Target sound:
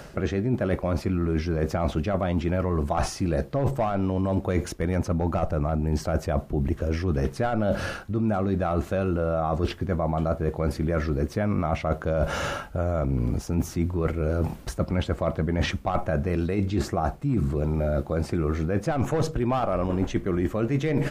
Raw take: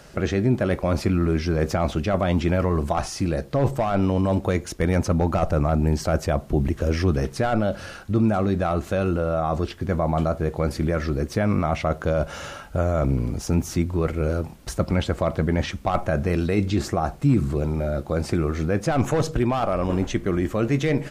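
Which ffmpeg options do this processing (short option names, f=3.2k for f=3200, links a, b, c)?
-af "equalizer=f=6.8k:w=0.37:g=-5.5,areverse,acompressor=threshold=-29dB:ratio=12,areverse,volume=8dB"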